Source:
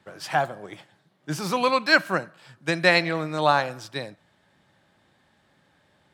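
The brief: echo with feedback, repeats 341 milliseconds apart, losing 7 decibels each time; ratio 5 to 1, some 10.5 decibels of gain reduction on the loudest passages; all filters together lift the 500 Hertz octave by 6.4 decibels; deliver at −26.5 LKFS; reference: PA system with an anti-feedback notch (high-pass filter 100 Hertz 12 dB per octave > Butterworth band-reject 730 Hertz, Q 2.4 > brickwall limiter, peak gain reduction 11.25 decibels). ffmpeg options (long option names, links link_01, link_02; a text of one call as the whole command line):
ffmpeg -i in.wav -af "equalizer=frequency=500:width_type=o:gain=8.5,acompressor=threshold=-22dB:ratio=5,highpass=100,asuperstop=centerf=730:order=8:qfactor=2.4,aecho=1:1:341|682|1023|1364|1705:0.447|0.201|0.0905|0.0407|0.0183,volume=7dB,alimiter=limit=-16.5dB:level=0:latency=1" out.wav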